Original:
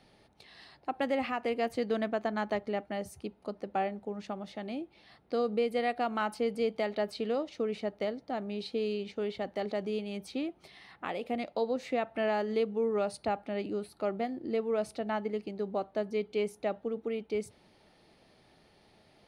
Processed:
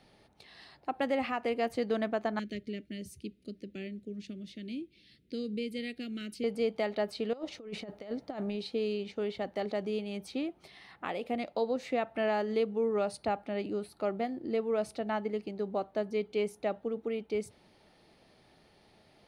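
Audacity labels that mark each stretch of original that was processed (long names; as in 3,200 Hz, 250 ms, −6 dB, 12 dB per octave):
2.390000	6.440000	Chebyshev band-stop filter 310–2,700 Hz
7.330000	8.560000	compressor whose output falls as the input rises −37 dBFS, ratio −0.5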